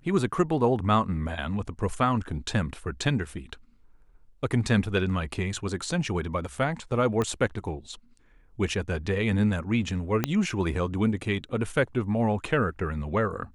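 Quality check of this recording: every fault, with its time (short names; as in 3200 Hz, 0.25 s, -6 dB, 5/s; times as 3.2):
7.22 pop -15 dBFS
10.24 pop -9 dBFS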